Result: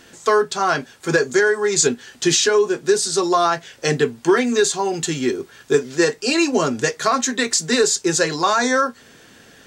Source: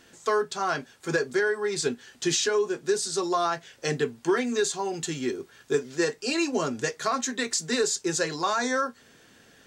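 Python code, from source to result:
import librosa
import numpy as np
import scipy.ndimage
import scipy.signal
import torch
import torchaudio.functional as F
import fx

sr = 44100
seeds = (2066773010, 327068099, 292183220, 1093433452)

y = fx.peak_eq(x, sr, hz=6800.0, db=13.5, octaves=0.24, at=(1.22, 1.87))
y = F.gain(torch.from_numpy(y), 8.5).numpy()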